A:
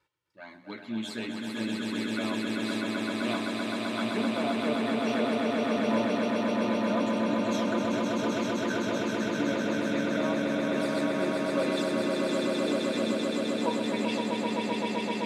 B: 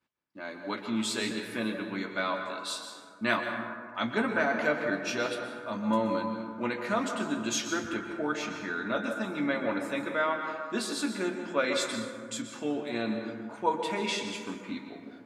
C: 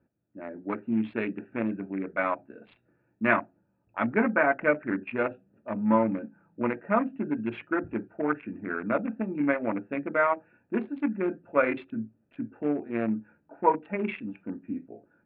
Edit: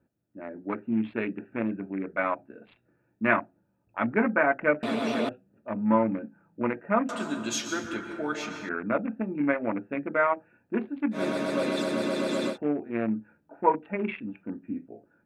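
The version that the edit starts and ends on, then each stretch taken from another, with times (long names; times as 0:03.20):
C
0:04.83–0:05.29: punch in from A
0:07.09–0:08.69: punch in from B
0:11.16–0:12.53: punch in from A, crossfade 0.10 s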